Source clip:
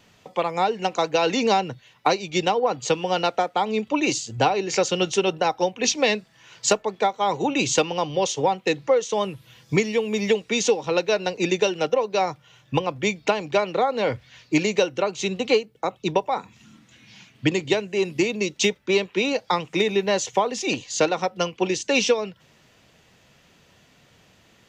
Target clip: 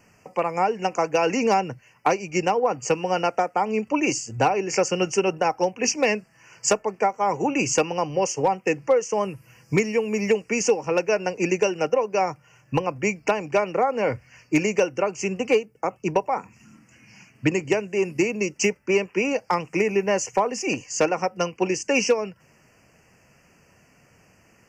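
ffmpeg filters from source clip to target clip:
ffmpeg -i in.wav -af "asuperstop=centerf=3700:order=8:qfactor=1.9,volume=11dB,asoftclip=hard,volume=-11dB" out.wav

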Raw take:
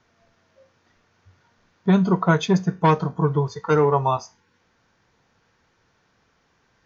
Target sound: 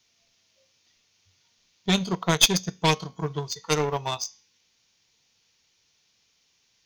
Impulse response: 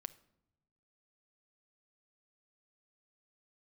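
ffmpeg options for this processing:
-filter_complex "[0:a]aexciter=amount=6.1:drive=7.7:freq=2300,bandreject=frequency=273:width_type=h:width=4,bandreject=frequency=546:width_type=h:width=4,bandreject=frequency=819:width_type=h:width=4,bandreject=frequency=1092:width_type=h:width=4,bandreject=frequency=1365:width_type=h:width=4,bandreject=frequency=1638:width_type=h:width=4,bandreject=frequency=1911:width_type=h:width=4,bandreject=frequency=2184:width_type=h:width=4,bandreject=frequency=2457:width_type=h:width=4,bandreject=frequency=2730:width_type=h:width=4,bandreject=frequency=3003:width_type=h:width=4,bandreject=frequency=3276:width_type=h:width=4,bandreject=frequency=3549:width_type=h:width=4,bandreject=frequency=3822:width_type=h:width=4,bandreject=frequency=4095:width_type=h:width=4,bandreject=frequency=4368:width_type=h:width=4,bandreject=frequency=4641:width_type=h:width=4,bandreject=frequency=4914:width_type=h:width=4,bandreject=frequency=5187:width_type=h:width=4,bandreject=frequency=5460:width_type=h:width=4,bandreject=frequency=5733:width_type=h:width=4,bandreject=frequency=6006:width_type=h:width=4,bandreject=frequency=6279:width_type=h:width=4,bandreject=frequency=6552:width_type=h:width=4,bandreject=frequency=6825:width_type=h:width=4,bandreject=frequency=7098:width_type=h:width=4,bandreject=frequency=7371:width_type=h:width=4,asplit=2[link_01][link_02];[link_02]asoftclip=type=tanh:threshold=-10dB,volume=-9.5dB[link_03];[link_01][link_03]amix=inputs=2:normalize=0,aeval=exprs='1.26*(cos(1*acos(clip(val(0)/1.26,-1,1)))-cos(1*PI/2))+0.447*(cos(2*acos(clip(val(0)/1.26,-1,1)))-cos(2*PI/2))+0.126*(cos(7*acos(clip(val(0)/1.26,-1,1)))-cos(7*PI/2))+0.0355*(cos(8*acos(clip(val(0)/1.26,-1,1)))-cos(8*PI/2))':channel_layout=same,volume=-6dB"

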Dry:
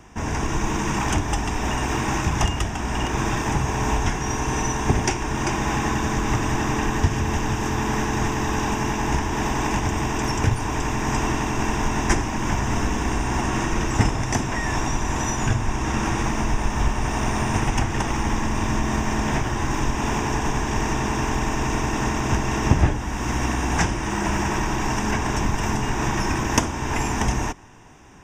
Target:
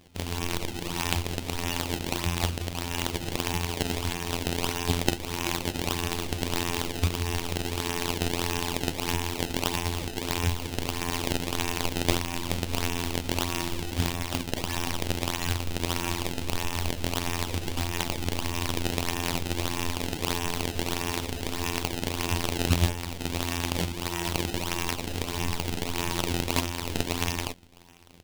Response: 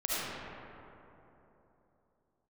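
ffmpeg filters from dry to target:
-af "afftfilt=real='hypot(re,im)*cos(PI*b)':imag='0':win_size=2048:overlap=0.75,acrusher=samples=22:mix=1:aa=0.000001:lfo=1:lforange=35.2:lforate=1.6,highshelf=frequency=2100:width_type=q:width=1.5:gain=6.5,volume=-3.5dB"

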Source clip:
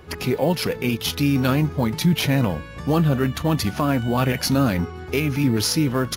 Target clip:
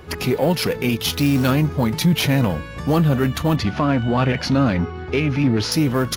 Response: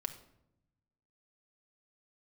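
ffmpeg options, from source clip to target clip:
-filter_complex "[0:a]asplit=2[link_01][link_02];[link_02]asoftclip=type=tanh:threshold=-23dB,volume=-4.5dB[link_03];[link_01][link_03]amix=inputs=2:normalize=0,asettb=1/sr,asplit=3[link_04][link_05][link_06];[link_04]atrim=end=1.094[link_07];[link_05]atrim=start=1.09:end=1.51,asetpts=PTS-STARTPTS,afade=type=in:duration=0.004:curve=qsin,afade=type=out:start_time=0.416:duration=0.004:curve=qsin,acrusher=bits=5:mode=log:mix=0:aa=0.000001[link_08];[link_06]atrim=start=1.506[link_09];[link_07][link_08]acrossfade=duration=0.004:curve1=hsin:curve2=qsin[link_10];[link_10][link_09]acrossfade=duration=0.004:curve1=qsin:curve2=hsin,asettb=1/sr,asplit=3[link_11][link_12][link_13];[link_11]atrim=end=3.564[link_14];[link_12]atrim=start=3.56:end=5.72,asetpts=PTS-STARTPTS,afade=type=in:duration=0.004:curve=qsin,afade=type=out:start_time=2.156:duration=0.004:curve=qsin,lowpass=4000[link_15];[link_13]atrim=start=5.716[link_16];[link_14][link_15]acrossfade=duration=0.004:curve1=hsin:curve2=qsin[link_17];[link_17][link_16]acrossfade=duration=0.004:curve1=qsin:curve2=hsin"

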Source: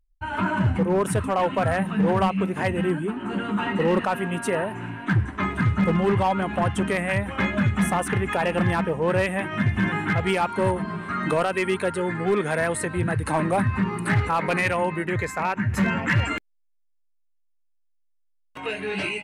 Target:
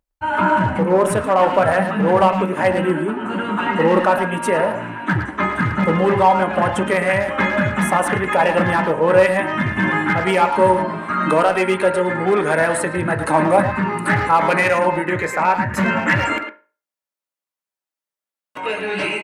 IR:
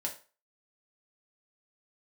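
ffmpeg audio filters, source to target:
-filter_complex "[0:a]highpass=frequency=350:poles=1,asplit=2[link_01][link_02];[link_02]adelay=110,highpass=300,lowpass=3400,asoftclip=type=hard:threshold=-21dB,volume=-7dB[link_03];[link_01][link_03]amix=inputs=2:normalize=0,asplit=2[link_04][link_05];[1:a]atrim=start_sample=2205,lowpass=2100[link_06];[link_05][link_06]afir=irnorm=-1:irlink=0,volume=-2.5dB[link_07];[link_04][link_07]amix=inputs=2:normalize=0,volume=4.5dB"

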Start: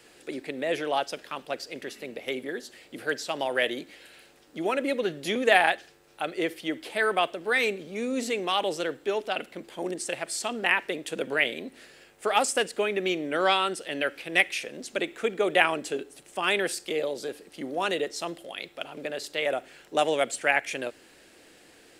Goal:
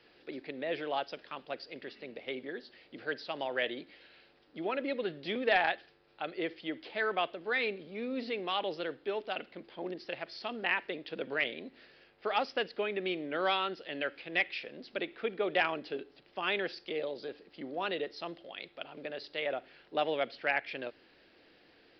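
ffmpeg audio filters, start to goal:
ffmpeg -i in.wav -af "asoftclip=type=hard:threshold=-12dB,aresample=11025,aresample=44100,volume=-7dB" out.wav

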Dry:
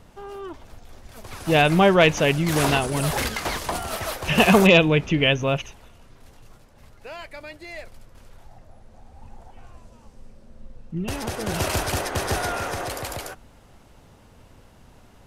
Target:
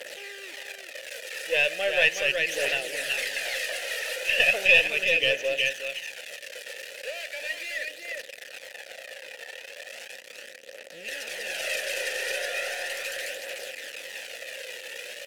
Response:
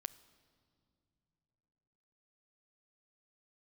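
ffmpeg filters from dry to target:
-filter_complex "[0:a]aeval=exprs='val(0)+0.5*0.0794*sgn(val(0))':channel_layout=same,asplit=3[link_01][link_02][link_03];[link_01]bandpass=frequency=530:width_type=q:width=8,volume=0dB[link_04];[link_02]bandpass=frequency=1840:width_type=q:width=8,volume=-6dB[link_05];[link_03]bandpass=frequency=2480:width_type=q:width=8,volume=-9dB[link_06];[link_04][link_05][link_06]amix=inputs=3:normalize=0,aderivative,aecho=1:1:371:0.596,asplit=2[link_07][link_08];[1:a]atrim=start_sample=2205[link_09];[link_08][link_09]afir=irnorm=-1:irlink=0,volume=15dB[link_10];[link_07][link_10]amix=inputs=2:normalize=0,aeval=exprs='0.316*(cos(1*acos(clip(val(0)/0.316,-1,1)))-cos(1*PI/2))+0.0178*(cos(2*acos(clip(val(0)/0.316,-1,1)))-cos(2*PI/2))+0.00447*(cos(6*acos(clip(val(0)/0.316,-1,1)))-cos(6*PI/2))':channel_layout=same,aphaser=in_gain=1:out_gain=1:delay=2.3:decay=0.36:speed=0.37:type=triangular,volume=3dB"

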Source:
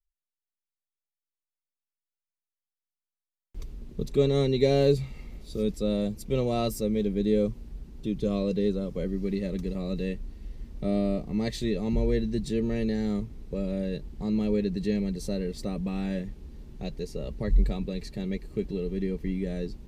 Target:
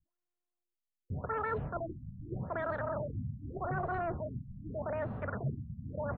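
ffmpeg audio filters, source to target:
ffmpeg -i in.wav -filter_complex "[0:a]tiltshelf=frequency=1200:gain=9.5,areverse,acompressor=threshold=-27dB:ratio=5,areverse,asplit=8[link_01][link_02][link_03][link_04][link_05][link_06][link_07][link_08];[link_02]adelay=84,afreqshift=-110,volume=-14dB[link_09];[link_03]adelay=168,afreqshift=-220,volume=-18.3dB[link_10];[link_04]adelay=252,afreqshift=-330,volume=-22.6dB[link_11];[link_05]adelay=336,afreqshift=-440,volume=-26.9dB[link_12];[link_06]adelay=420,afreqshift=-550,volume=-31.2dB[link_13];[link_07]adelay=504,afreqshift=-660,volume=-35.5dB[link_14];[link_08]adelay=588,afreqshift=-770,volume=-39.8dB[link_15];[link_01][link_09][link_10][link_11][link_12][link_13][link_14][link_15]amix=inputs=8:normalize=0,asetrate=142002,aresample=44100,afftfilt=real='re*lt(b*sr/1024,230*pow(4600/230,0.5+0.5*sin(2*PI*0.83*pts/sr)))':imag='im*lt(b*sr/1024,230*pow(4600/230,0.5+0.5*sin(2*PI*0.83*pts/sr)))':win_size=1024:overlap=0.75,volume=-6dB" out.wav

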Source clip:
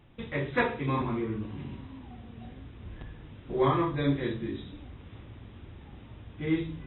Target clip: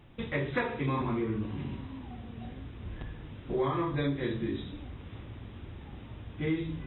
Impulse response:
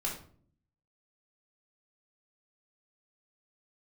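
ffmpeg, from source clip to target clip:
-af "acompressor=threshold=-29dB:ratio=6,volume=2.5dB"

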